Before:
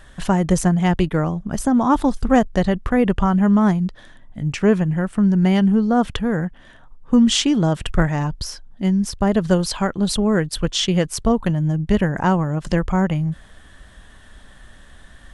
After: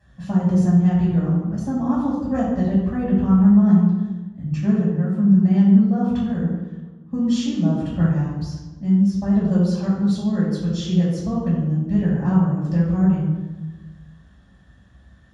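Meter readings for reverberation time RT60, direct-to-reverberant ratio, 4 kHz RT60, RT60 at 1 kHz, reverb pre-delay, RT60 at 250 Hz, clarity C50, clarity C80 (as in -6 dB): 1.2 s, -8.5 dB, 0.75 s, 1.1 s, 3 ms, 1.5 s, 0.0 dB, 2.5 dB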